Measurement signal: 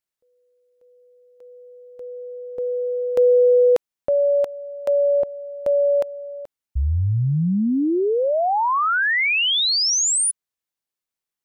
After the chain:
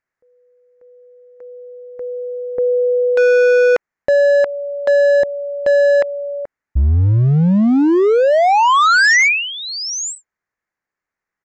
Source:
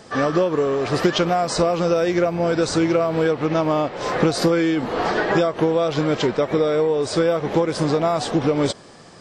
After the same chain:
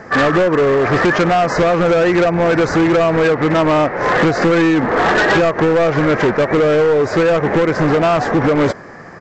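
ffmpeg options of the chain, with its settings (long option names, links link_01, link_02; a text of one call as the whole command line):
ffmpeg -i in.wav -af "highshelf=frequency=2500:width_type=q:width=3:gain=-10,aresample=16000,asoftclip=type=hard:threshold=-18.5dB,aresample=44100,volume=8.5dB" out.wav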